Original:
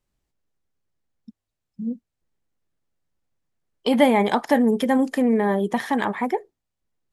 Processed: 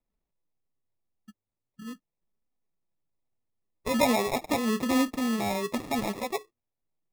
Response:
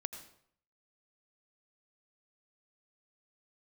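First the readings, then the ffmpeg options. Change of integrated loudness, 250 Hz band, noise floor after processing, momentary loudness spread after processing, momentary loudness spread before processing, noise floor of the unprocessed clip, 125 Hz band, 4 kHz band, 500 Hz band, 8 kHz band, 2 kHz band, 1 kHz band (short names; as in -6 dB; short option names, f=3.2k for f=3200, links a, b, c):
-6.5 dB, -7.5 dB, under -85 dBFS, 18 LU, 14 LU, -83 dBFS, n/a, -2.0 dB, -8.5 dB, +6.0 dB, -6.0 dB, -7.0 dB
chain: -af "flanger=delay=3.8:depth=6.4:regen=15:speed=0.4:shape=triangular,acrusher=samples=29:mix=1:aa=0.000001,volume=-4dB"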